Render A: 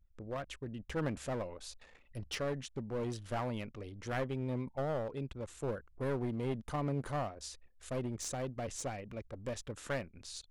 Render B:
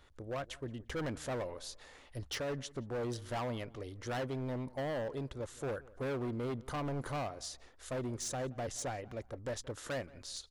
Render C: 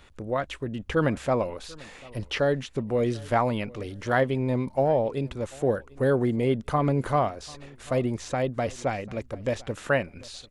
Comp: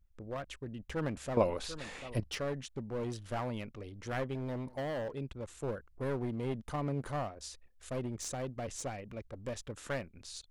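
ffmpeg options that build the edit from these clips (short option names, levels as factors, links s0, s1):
-filter_complex "[0:a]asplit=3[s0][s1][s2];[s0]atrim=end=1.372[s3];[2:a]atrim=start=1.368:end=2.202[s4];[s1]atrim=start=2.198:end=4.352[s5];[1:a]atrim=start=4.348:end=5.122[s6];[s2]atrim=start=5.118[s7];[s3][s4]acrossfade=d=0.004:c1=hsin:c2=hsin[s8];[s8][s5]acrossfade=d=0.004:c1=hsin:c2=hsin[s9];[s9][s6]acrossfade=d=0.004:c1=hsin:c2=hsin[s10];[s10][s7]acrossfade=d=0.004:c1=hsin:c2=hsin"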